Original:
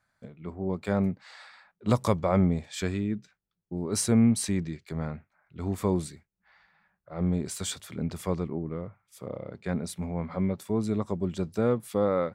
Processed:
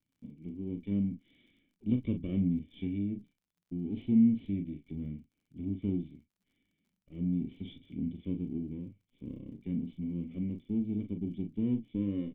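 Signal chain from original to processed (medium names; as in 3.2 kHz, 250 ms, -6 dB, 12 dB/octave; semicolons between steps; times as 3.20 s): comb filter that takes the minimum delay 0.57 ms; peaking EQ 1.5 kHz -11 dB 0.86 oct; in parallel at -2.5 dB: compression, threshold -35 dBFS, peak gain reduction 16.5 dB; on the sum: cascade formant filter i; doubling 40 ms -7.5 dB; crackle 59 per s -64 dBFS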